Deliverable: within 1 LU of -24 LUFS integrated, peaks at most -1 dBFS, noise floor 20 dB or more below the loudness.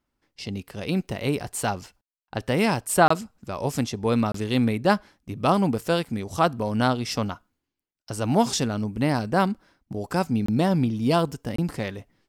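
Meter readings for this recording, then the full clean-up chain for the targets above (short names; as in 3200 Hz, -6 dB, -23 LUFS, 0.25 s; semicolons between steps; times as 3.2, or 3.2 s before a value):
dropouts 4; longest dropout 24 ms; loudness -25.0 LUFS; peak -5.0 dBFS; loudness target -24.0 LUFS
-> interpolate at 3.08/4.32/10.46/11.56, 24 ms; gain +1 dB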